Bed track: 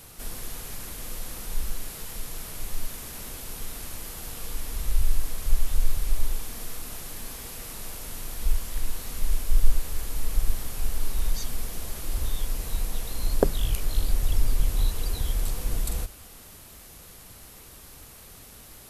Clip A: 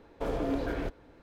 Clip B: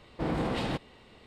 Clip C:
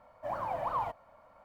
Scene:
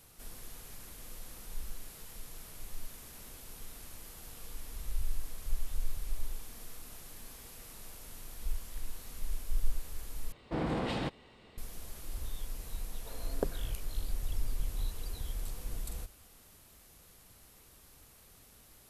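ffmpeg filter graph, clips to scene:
ffmpeg -i bed.wav -i cue0.wav -i cue1.wav -filter_complex "[0:a]volume=-11.5dB[link_01];[1:a]highpass=frequency=890:poles=1[link_02];[link_01]asplit=2[link_03][link_04];[link_03]atrim=end=10.324[link_05];[2:a]atrim=end=1.26,asetpts=PTS-STARTPTS,volume=-3dB[link_06];[link_04]atrim=start=11.576[link_07];[link_02]atrim=end=1.22,asetpts=PTS-STARTPTS,volume=-13.5dB,afade=type=in:duration=0.004:curve=hsin,afade=type=out:start_time=1.216:duration=0.004:curve=hsin,adelay=12850[link_08];[link_05][link_06]acrossfade=duration=0.004:curve1=hsin:curve2=hsin[link_09];[link_09][link_07]acrossfade=duration=0.004:curve1=hsin:curve2=hsin[link_10];[link_10][link_08]amix=inputs=2:normalize=0" out.wav

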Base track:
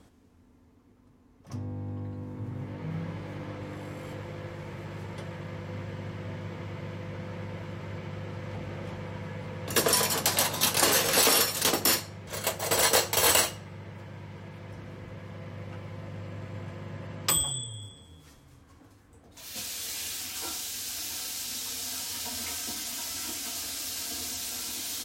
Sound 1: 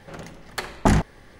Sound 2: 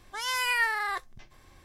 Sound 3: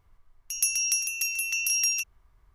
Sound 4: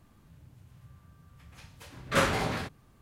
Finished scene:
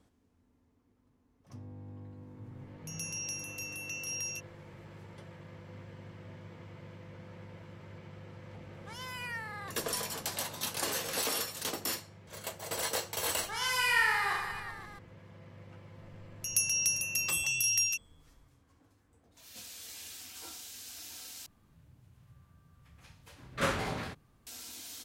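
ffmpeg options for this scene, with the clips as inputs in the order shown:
ffmpeg -i bed.wav -i cue0.wav -i cue1.wav -i cue2.wav -i cue3.wav -filter_complex "[3:a]asplit=2[link_01][link_02];[2:a]asplit=2[link_03][link_04];[0:a]volume=-11dB[link_05];[link_01]acrossover=split=7000[link_06][link_07];[link_07]acompressor=threshold=-32dB:ratio=4:attack=1:release=60[link_08];[link_06][link_08]amix=inputs=2:normalize=0[link_09];[link_03]asoftclip=type=tanh:threshold=-20dB[link_10];[link_04]aecho=1:1:30|69|119.7|185.6|271.3|382.7|527.5|715.7:0.794|0.631|0.501|0.398|0.316|0.251|0.2|0.158[link_11];[link_05]asplit=2[link_12][link_13];[link_12]atrim=end=21.464[link_14];[4:a]atrim=end=3.01,asetpts=PTS-STARTPTS,volume=-5.5dB[link_15];[link_13]atrim=start=24.466[link_16];[link_09]atrim=end=2.54,asetpts=PTS-STARTPTS,volume=-11.5dB,afade=type=in:duration=0.004:curve=hsin,afade=type=out:start_time=2.536:duration=0.004:curve=hsin,adelay=2370[link_17];[link_10]atrim=end=1.64,asetpts=PTS-STARTPTS,volume=-12.5dB,afade=type=in:duration=0.004:curve=hsin,afade=type=out:start_time=1.636:duration=0.004:curve=hsin,adelay=8730[link_18];[link_11]atrim=end=1.64,asetpts=PTS-STARTPTS,volume=-4.5dB,afade=type=in:duration=0.004:curve=hsin,afade=type=out:start_time=1.636:duration=0.004:curve=hsin,adelay=13350[link_19];[link_02]atrim=end=2.54,asetpts=PTS-STARTPTS,volume=-3.5dB,afade=type=in:duration=0.004:curve=hsin,afade=type=out:start_time=2.536:duration=0.004:curve=hsin,adelay=15940[link_20];[link_14][link_15]acrossfade=duration=0.004:curve1=hsin:curve2=hsin[link_21];[link_21][link_16]acrossfade=duration=0.004:curve1=hsin:curve2=hsin[link_22];[link_22][link_17][link_18][link_19][link_20]amix=inputs=5:normalize=0" out.wav

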